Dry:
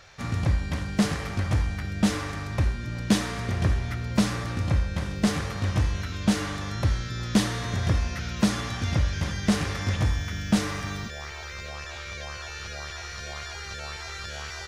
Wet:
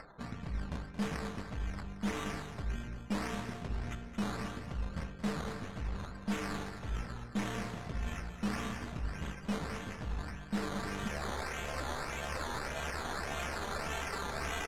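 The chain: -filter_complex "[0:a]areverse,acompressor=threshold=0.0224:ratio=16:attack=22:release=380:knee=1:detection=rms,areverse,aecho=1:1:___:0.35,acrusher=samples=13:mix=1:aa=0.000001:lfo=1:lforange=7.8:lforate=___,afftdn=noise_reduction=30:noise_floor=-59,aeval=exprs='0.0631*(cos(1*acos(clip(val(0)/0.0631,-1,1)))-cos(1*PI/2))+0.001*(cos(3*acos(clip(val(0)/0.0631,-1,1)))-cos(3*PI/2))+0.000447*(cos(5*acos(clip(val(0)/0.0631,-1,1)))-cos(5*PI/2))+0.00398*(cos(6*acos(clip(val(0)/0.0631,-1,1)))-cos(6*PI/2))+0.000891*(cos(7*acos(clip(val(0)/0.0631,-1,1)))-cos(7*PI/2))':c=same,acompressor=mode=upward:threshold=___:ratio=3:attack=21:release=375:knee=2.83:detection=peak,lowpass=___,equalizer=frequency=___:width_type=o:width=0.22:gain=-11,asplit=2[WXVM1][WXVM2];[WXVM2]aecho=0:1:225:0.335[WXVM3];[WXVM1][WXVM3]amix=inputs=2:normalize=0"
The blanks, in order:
4.5, 1.7, 0.00251, 10k, 92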